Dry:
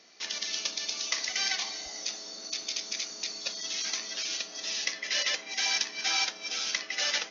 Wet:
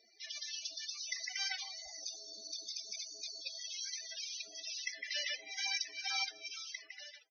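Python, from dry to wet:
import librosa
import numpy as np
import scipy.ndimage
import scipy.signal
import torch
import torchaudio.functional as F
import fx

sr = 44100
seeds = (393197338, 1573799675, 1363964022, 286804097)

y = fx.fade_out_tail(x, sr, length_s=1.02)
y = fx.spec_topn(y, sr, count=32)
y = F.gain(torch.from_numpy(y), -6.0).numpy()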